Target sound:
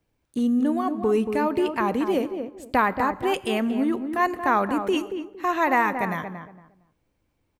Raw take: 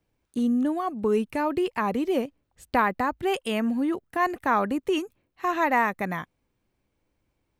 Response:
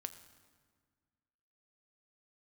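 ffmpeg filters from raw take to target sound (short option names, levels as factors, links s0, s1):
-filter_complex "[0:a]asplit=2[s0][s1];[s1]adelay=230,lowpass=f=1300:p=1,volume=0.447,asplit=2[s2][s3];[s3]adelay=230,lowpass=f=1300:p=1,volume=0.25,asplit=2[s4][s5];[s5]adelay=230,lowpass=f=1300:p=1,volume=0.25[s6];[s0][s2][s4][s6]amix=inputs=4:normalize=0,asplit=2[s7][s8];[1:a]atrim=start_sample=2205,afade=t=out:st=0.34:d=0.01,atrim=end_sample=15435[s9];[s8][s9]afir=irnorm=-1:irlink=0,volume=1.19[s10];[s7][s10]amix=inputs=2:normalize=0,volume=0.668"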